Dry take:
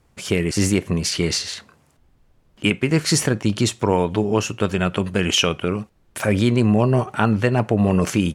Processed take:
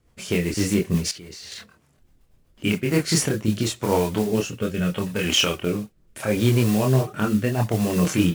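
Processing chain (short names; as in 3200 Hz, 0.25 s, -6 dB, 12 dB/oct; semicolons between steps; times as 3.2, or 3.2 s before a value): modulation noise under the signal 17 dB; rotary speaker horn 8 Hz, later 0.75 Hz, at 2.5; chorus voices 4, 0.44 Hz, delay 26 ms, depth 3.4 ms; 1.11–1.52 level quantiser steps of 21 dB; 4.5–5.24 notch comb 340 Hz; gain +2 dB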